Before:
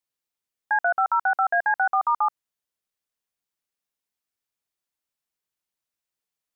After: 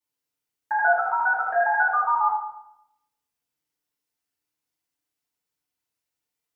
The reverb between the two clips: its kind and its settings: FDN reverb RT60 0.77 s, low-frequency decay 1.35×, high-frequency decay 0.85×, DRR -9 dB; gain -7 dB

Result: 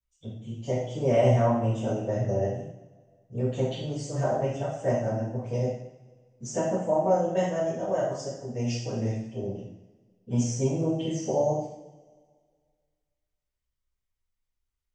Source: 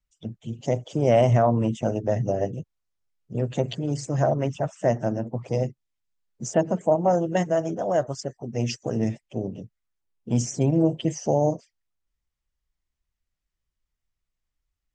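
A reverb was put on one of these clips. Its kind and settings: two-slope reverb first 0.7 s, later 1.9 s, from -18 dB, DRR -10 dB; gain -13.5 dB

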